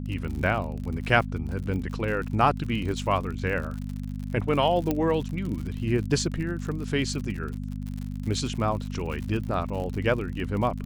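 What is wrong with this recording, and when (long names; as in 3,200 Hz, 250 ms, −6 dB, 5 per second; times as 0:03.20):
surface crackle 63 per second −33 dBFS
mains hum 50 Hz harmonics 5 −33 dBFS
0:04.91: click −12 dBFS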